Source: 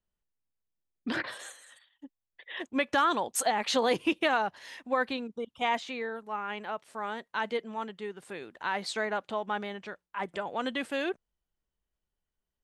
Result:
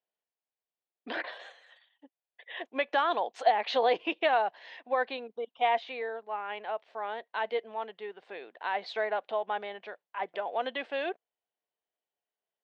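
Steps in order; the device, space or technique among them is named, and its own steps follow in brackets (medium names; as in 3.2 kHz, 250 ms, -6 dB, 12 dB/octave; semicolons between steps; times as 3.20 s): phone earpiece (cabinet simulation 450–3900 Hz, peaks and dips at 460 Hz +4 dB, 700 Hz +8 dB, 1.3 kHz -5 dB); trim -1 dB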